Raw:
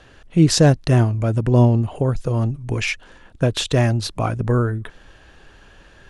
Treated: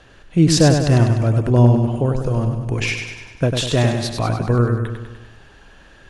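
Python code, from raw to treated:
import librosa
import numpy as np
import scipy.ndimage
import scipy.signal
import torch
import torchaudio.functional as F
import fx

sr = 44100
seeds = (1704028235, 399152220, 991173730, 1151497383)

y = fx.echo_feedback(x, sr, ms=99, feedback_pct=57, wet_db=-6)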